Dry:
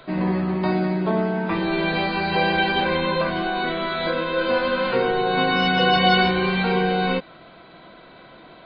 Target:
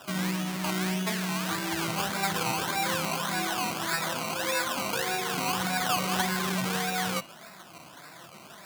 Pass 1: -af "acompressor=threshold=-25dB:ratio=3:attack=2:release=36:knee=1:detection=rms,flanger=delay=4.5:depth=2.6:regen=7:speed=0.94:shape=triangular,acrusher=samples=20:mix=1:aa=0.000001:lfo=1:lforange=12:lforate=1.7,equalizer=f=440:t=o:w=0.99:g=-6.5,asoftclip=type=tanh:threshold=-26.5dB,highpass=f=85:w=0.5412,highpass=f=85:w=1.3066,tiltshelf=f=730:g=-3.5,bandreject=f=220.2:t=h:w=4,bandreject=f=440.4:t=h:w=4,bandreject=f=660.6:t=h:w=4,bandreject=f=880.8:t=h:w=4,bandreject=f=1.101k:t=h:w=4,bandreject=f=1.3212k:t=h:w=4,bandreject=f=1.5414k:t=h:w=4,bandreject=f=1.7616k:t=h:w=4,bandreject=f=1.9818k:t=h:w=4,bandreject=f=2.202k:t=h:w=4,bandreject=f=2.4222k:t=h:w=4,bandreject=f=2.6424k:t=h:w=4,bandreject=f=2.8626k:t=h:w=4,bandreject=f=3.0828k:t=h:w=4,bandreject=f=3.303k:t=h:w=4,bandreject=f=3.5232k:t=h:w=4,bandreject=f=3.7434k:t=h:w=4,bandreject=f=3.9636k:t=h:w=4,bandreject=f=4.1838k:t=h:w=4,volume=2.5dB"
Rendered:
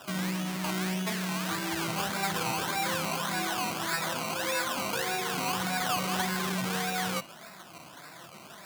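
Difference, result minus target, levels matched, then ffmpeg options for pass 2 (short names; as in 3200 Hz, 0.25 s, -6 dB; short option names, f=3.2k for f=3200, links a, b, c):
soft clip: distortion +15 dB
-af "acompressor=threshold=-25dB:ratio=3:attack=2:release=36:knee=1:detection=rms,flanger=delay=4.5:depth=2.6:regen=7:speed=0.94:shape=triangular,acrusher=samples=20:mix=1:aa=0.000001:lfo=1:lforange=12:lforate=1.7,equalizer=f=440:t=o:w=0.99:g=-6.5,asoftclip=type=tanh:threshold=-17dB,highpass=f=85:w=0.5412,highpass=f=85:w=1.3066,tiltshelf=f=730:g=-3.5,bandreject=f=220.2:t=h:w=4,bandreject=f=440.4:t=h:w=4,bandreject=f=660.6:t=h:w=4,bandreject=f=880.8:t=h:w=4,bandreject=f=1.101k:t=h:w=4,bandreject=f=1.3212k:t=h:w=4,bandreject=f=1.5414k:t=h:w=4,bandreject=f=1.7616k:t=h:w=4,bandreject=f=1.9818k:t=h:w=4,bandreject=f=2.202k:t=h:w=4,bandreject=f=2.4222k:t=h:w=4,bandreject=f=2.6424k:t=h:w=4,bandreject=f=2.8626k:t=h:w=4,bandreject=f=3.0828k:t=h:w=4,bandreject=f=3.303k:t=h:w=4,bandreject=f=3.5232k:t=h:w=4,bandreject=f=3.7434k:t=h:w=4,bandreject=f=3.9636k:t=h:w=4,bandreject=f=4.1838k:t=h:w=4,volume=2.5dB"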